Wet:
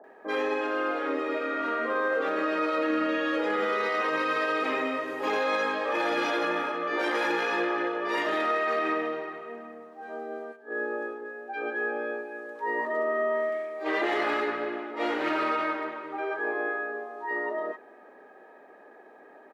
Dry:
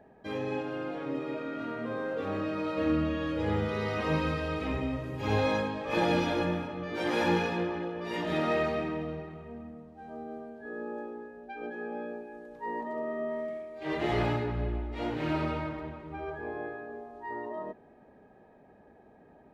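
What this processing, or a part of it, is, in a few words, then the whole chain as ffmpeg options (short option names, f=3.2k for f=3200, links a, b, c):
laptop speaker: -filter_complex "[0:a]asplit=3[a][b][c];[a]afade=t=out:st=10.51:d=0.02[d];[b]agate=range=-11dB:threshold=-40dB:ratio=16:detection=peak,afade=t=in:st=10.51:d=0.02,afade=t=out:st=11.2:d=0.02[e];[c]afade=t=in:st=11.2:d=0.02[f];[d][e][f]amix=inputs=3:normalize=0,highpass=f=320:w=0.5412,highpass=f=320:w=1.3066,equalizer=f=1.2k:t=o:w=0.56:g=9,equalizer=f=1.8k:t=o:w=0.55:g=6,acrossover=split=1100[g][h];[h]adelay=40[i];[g][i]amix=inputs=2:normalize=0,alimiter=level_in=1.5dB:limit=-24dB:level=0:latency=1:release=30,volume=-1.5dB,volume=6.5dB"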